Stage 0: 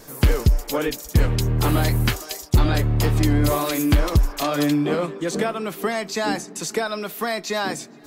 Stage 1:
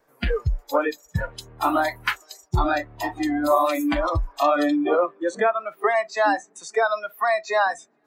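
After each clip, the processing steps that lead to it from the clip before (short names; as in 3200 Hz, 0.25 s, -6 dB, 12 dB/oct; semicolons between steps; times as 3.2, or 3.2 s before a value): spectral noise reduction 22 dB; three-band isolator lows -12 dB, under 430 Hz, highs -16 dB, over 2300 Hz; gain +7 dB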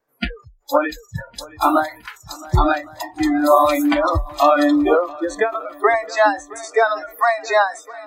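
spectral noise reduction 16 dB; swung echo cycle 1.109 s, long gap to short 1.5:1, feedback 34%, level -21.5 dB; ending taper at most 170 dB/s; gain +6 dB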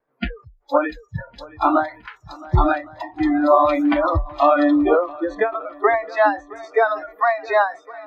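air absorption 300 m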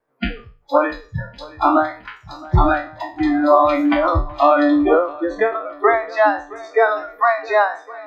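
spectral trails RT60 0.36 s; gain +1 dB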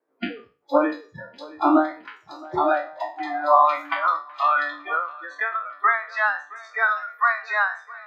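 high-pass sweep 310 Hz -> 1400 Hz, 2.14–4.19; gain -6 dB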